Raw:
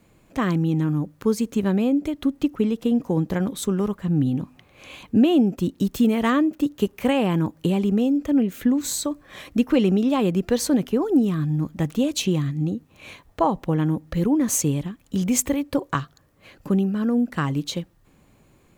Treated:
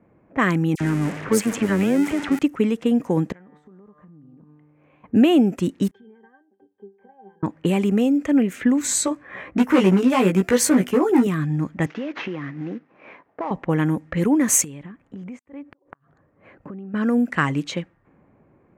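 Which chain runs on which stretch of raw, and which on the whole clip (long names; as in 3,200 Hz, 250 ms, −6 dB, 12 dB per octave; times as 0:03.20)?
0:00.75–0:02.39: converter with a step at zero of −27 dBFS + all-pass dispersion lows, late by 56 ms, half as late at 2,200 Hz + amplitude modulation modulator 99 Hz, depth 25%
0:03.32–0:05.04: tuned comb filter 150 Hz, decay 1.8 s, mix 80% + downward compressor 16 to 1, threshold −45 dBFS
0:05.91–0:07.43: band-pass filter 440–5,200 Hz + downward compressor 5 to 1, threshold −32 dBFS + resonances in every octave G, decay 0.2 s
0:08.87–0:11.27: hard clipping −15.5 dBFS + double-tracking delay 16 ms −3 dB
0:11.86–0:13.51: variable-slope delta modulation 32 kbit/s + high-pass filter 240 Hz + downward compressor 12 to 1, threshold −26 dBFS
0:14.64–0:16.94: high-shelf EQ 5,400 Hz +9.5 dB + downward compressor 8 to 1, threshold −34 dBFS + gate with flip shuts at −24 dBFS, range −34 dB
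whole clip: high-pass filter 160 Hz 6 dB per octave; low-pass that shuts in the quiet parts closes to 840 Hz, open at −19.5 dBFS; octave-band graphic EQ 2,000/4,000/8,000 Hz +9/−7/+5 dB; level +3 dB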